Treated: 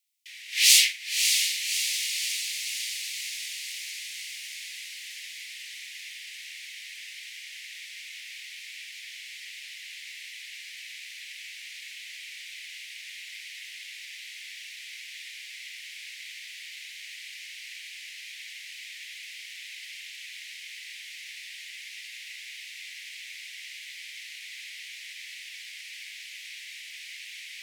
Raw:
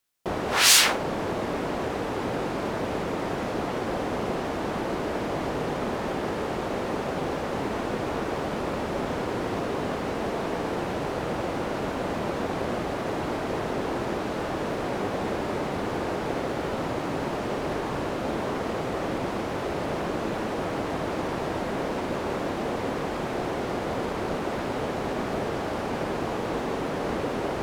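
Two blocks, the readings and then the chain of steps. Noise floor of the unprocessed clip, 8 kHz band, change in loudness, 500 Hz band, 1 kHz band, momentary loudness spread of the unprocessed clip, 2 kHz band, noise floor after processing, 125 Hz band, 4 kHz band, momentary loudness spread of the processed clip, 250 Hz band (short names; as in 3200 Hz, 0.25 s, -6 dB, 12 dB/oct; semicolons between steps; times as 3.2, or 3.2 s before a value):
-31 dBFS, +2.0 dB, -3.5 dB, under -40 dB, under -40 dB, 1 LU, -2.0 dB, -44 dBFS, under -40 dB, +2.0 dB, 14 LU, under -40 dB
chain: steep high-pass 2000 Hz 72 dB/oct; diffused feedback echo 0.598 s, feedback 69%, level -5 dB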